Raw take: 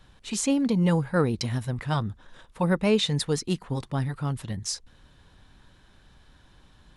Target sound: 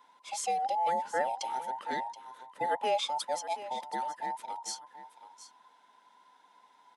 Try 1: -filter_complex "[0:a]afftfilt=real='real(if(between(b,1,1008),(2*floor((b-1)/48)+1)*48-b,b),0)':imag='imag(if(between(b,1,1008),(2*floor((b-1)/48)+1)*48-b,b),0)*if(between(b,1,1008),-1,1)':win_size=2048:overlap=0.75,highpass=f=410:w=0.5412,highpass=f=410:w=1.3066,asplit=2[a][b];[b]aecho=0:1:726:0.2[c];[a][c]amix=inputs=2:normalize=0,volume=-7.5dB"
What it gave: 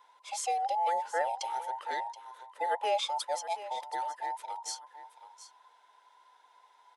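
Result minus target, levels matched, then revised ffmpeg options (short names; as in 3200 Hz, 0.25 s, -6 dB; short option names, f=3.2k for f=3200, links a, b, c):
250 Hz band -11.0 dB
-filter_complex "[0:a]afftfilt=real='real(if(between(b,1,1008),(2*floor((b-1)/48)+1)*48-b,b),0)':imag='imag(if(between(b,1,1008),(2*floor((b-1)/48)+1)*48-b,b),0)*if(between(b,1,1008),-1,1)':win_size=2048:overlap=0.75,highpass=f=200:w=0.5412,highpass=f=200:w=1.3066,asplit=2[a][b];[b]aecho=0:1:726:0.2[c];[a][c]amix=inputs=2:normalize=0,volume=-7.5dB"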